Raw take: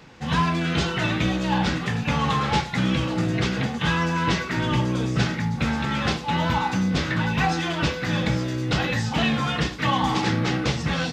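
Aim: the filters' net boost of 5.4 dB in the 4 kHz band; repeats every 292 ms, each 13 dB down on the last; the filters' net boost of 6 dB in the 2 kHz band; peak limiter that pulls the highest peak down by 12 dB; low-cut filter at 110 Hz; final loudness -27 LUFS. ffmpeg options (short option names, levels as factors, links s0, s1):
-af "highpass=110,equalizer=f=2000:t=o:g=6.5,equalizer=f=4000:t=o:g=4.5,alimiter=limit=0.119:level=0:latency=1,aecho=1:1:292|584|876:0.224|0.0493|0.0108,volume=0.891"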